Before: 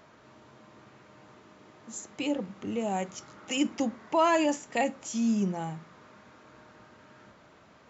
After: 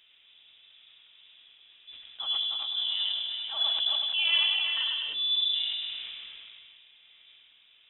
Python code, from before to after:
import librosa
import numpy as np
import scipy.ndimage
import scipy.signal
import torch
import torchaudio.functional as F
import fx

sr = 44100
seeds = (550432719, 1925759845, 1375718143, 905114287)

y = fx.reverse_delay_fb(x, sr, ms=194, feedback_pct=64, wet_db=-4.0, at=(2.0, 4.77))
y = fx.tilt_shelf(y, sr, db=5.5, hz=1200.0)
y = fx.echo_feedback(y, sr, ms=101, feedback_pct=35, wet_db=-5.0)
y = fx.rev_spring(y, sr, rt60_s=2.5, pass_ms=(33,), chirp_ms=55, drr_db=14.0)
y = fx.freq_invert(y, sr, carrier_hz=3700)
y = fx.sustainer(y, sr, db_per_s=22.0)
y = y * librosa.db_to_amplitude(-8.0)